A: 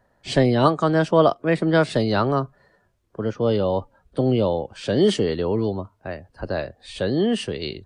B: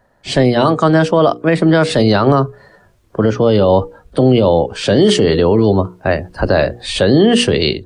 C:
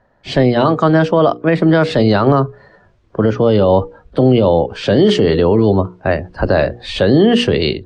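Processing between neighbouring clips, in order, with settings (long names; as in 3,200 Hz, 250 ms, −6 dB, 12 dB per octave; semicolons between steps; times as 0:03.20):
mains-hum notches 60/120/180/240/300/360/420/480 Hz; automatic gain control gain up to 12 dB; boost into a limiter +8.5 dB; level −1.5 dB
high-frequency loss of the air 130 metres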